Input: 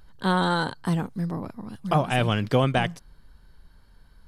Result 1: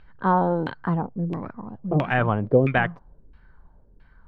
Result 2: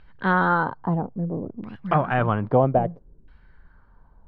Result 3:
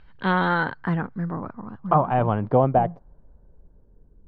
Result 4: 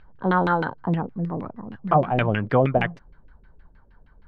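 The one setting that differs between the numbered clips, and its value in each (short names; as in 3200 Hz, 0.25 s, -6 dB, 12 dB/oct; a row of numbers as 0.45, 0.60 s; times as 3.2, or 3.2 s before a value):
LFO low-pass, rate: 1.5, 0.61, 0.22, 6.4 Hz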